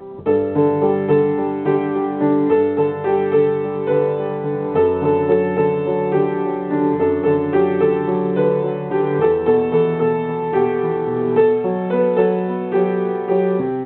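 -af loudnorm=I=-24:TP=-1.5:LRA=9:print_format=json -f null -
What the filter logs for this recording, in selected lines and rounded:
"input_i" : "-17.9",
"input_tp" : "-5.3",
"input_lra" : "0.7",
"input_thresh" : "-27.9",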